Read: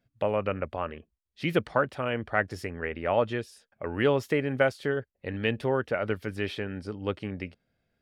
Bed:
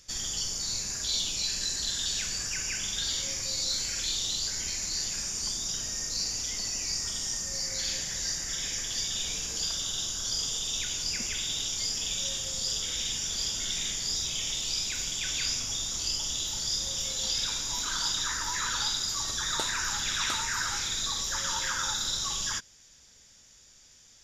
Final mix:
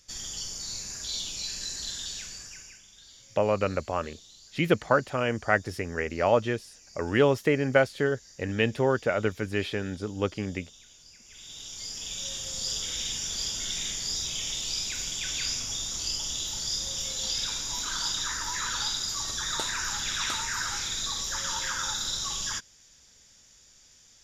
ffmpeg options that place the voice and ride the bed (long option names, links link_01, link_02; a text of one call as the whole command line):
ffmpeg -i stem1.wav -i stem2.wav -filter_complex "[0:a]adelay=3150,volume=2.5dB[link_01];[1:a]volume=17dB,afade=type=out:start_time=1.89:duration=0.94:silence=0.133352,afade=type=in:start_time=11.24:duration=1.46:silence=0.0891251[link_02];[link_01][link_02]amix=inputs=2:normalize=0" out.wav